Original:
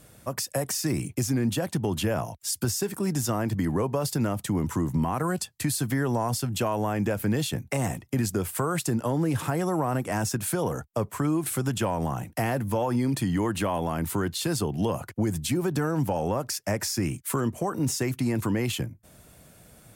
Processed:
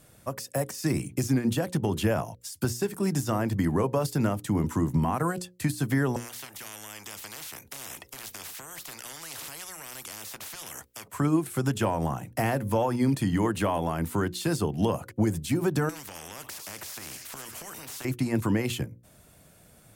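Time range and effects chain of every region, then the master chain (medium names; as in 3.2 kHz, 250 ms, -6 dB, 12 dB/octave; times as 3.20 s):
6.16–11.08 s: harmonic tremolo 1.2 Hz, depth 50%, crossover 670 Hz + spectrum-flattening compressor 10:1
15.89–18.05 s: feedback echo behind a high-pass 96 ms, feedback 65%, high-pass 1.7 kHz, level -18.5 dB + compression 3:1, threshold -27 dBFS + spectrum-flattening compressor 4:1
whole clip: de-esser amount 55%; hum notches 60/120/180/240/300/360/420/480/540 Hz; upward expansion 1.5:1, over -34 dBFS; trim +3 dB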